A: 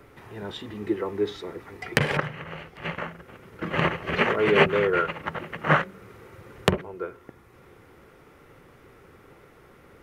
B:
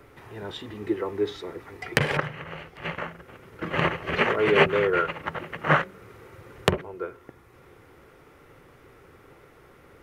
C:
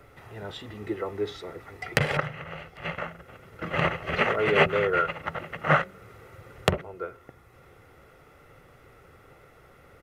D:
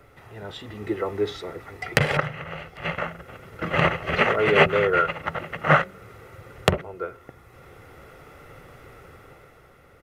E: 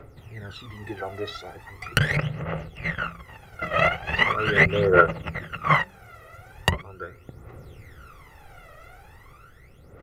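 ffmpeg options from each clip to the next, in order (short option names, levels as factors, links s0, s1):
-af "equalizer=f=200:w=3.8:g=-5"
-af "aecho=1:1:1.5:0.37,volume=0.841"
-af "dynaudnorm=f=160:g=11:m=2.37"
-af "aphaser=in_gain=1:out_gain=1:delay=1.6:decay=0.79:speed=0.4:type=triangular,volume=0.596"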